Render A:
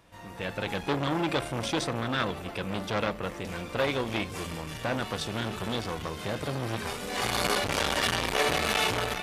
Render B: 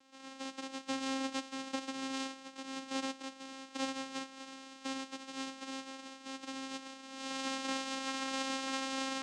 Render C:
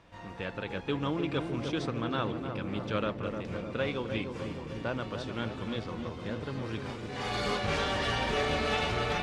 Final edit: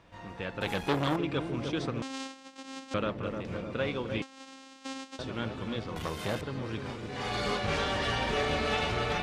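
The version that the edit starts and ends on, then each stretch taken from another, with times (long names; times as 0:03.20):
C
0:00.61–0:01.16: punch in from A
0:02.02–0:02.94: punch in from B
0:04.22–0:05.19: punch in from B
0:05.96–0:06.41: punch in from A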